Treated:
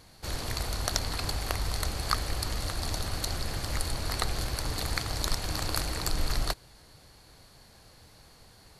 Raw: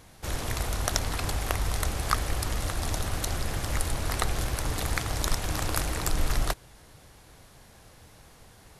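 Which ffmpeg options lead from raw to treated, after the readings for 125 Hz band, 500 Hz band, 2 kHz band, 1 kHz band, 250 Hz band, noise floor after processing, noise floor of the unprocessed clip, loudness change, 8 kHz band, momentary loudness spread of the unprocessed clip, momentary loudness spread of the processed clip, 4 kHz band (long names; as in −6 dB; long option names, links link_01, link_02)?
−3.0 dB, −3.0 dB, −3.0 dB, −3.0 dB, −3.0 dB, −56 dBFS, −54 dBFS, −2.0 dB, −2.5 dB, 3 LU, 3 LU, +2.0 dB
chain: -af "equalizer=frequency=4400:width_type=o:width=0.2:gain=12.5,volume=-3dB"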